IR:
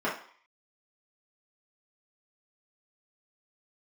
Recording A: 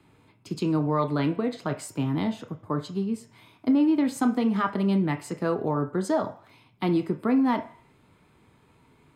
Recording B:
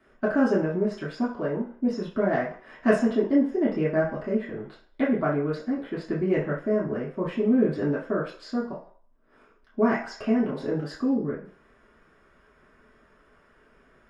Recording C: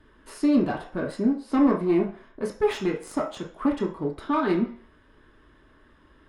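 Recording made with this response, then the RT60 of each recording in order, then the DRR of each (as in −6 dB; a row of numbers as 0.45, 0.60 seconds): B; 0.50, 0.50, 0.50 seconds; 6.0, −8.0, −1.5 decibels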